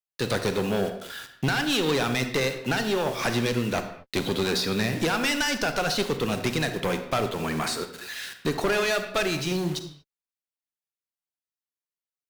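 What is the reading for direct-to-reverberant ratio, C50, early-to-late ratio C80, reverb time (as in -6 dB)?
8.0 dB, 9.0 dB, 11.5 dB, no single decay rate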